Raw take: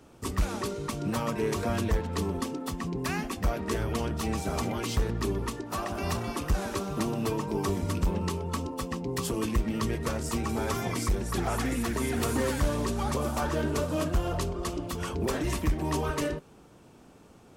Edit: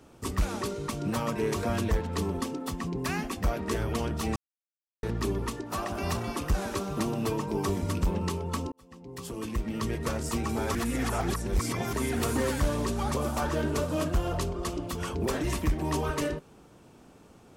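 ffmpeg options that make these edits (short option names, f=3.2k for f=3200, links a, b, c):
-filter_complex "[0:a]asplit=6[a][b][c][d][e][f];[a]atrim=end=4.36,asetpts=PTS-STARTPTS,afade=t=out:st=4.356:d=0.004:c=hsin[g];[b]atrim=start=4.36:end=5.03,asetpts=PTS-STARTPTS,volume=0[h];[c]atrim=start=5.03:end=8.72,asetpts=PTS-STARTPTS,afade=t=in:d=0.004:c=hsin,afade=t=out:st=3.686:d=0.004:c=hsin[i];[d]atrim=start=8.72:end=10.752,asetpts=PTS-STARTPTS,afade=t=in:d=1.37[j];[e]atrim=start=10.748:end=11.932,asetpts=PTS-STARTPTS,areverse[k];[f]atrim=start=11.928[l];[g][h][i][j]concat=n=4:v=0:a=1[m];[m][k]acrossfade=d=0.004:c1=hsin:c2=hsin[n];[n][l]acrossfade=d=0.004:c1=hsin:c2=hsin"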